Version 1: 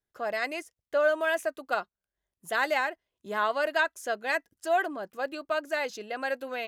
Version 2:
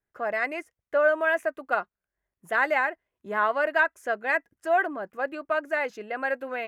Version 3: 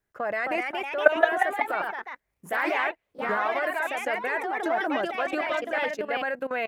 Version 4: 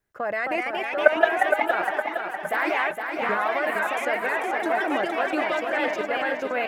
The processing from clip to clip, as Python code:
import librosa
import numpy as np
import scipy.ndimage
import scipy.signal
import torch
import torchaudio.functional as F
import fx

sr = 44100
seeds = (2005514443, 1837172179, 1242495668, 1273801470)

y1 = fx.high_shelf_res(x, sr, hz=2800.0, db=-10.0, q=1.5)
y1 = y1 * librosa.db_to_amplitude(2.0)
y2 = fx.level_steps(y1, sr, step_db=18)
y2 = fx.echo_pitch(y2, sr, ms=287, semitones=2, count=3, db_per_echo=-3.0)
y2 = y2 * librosa.db_to_amplitude(8.0)
y3 = fx.echo_feedback(y2, sr, ms=463, feedback_pct=53, wet_db=-6)
y3 = y3 * librosa.db_to_amplitude(1.5)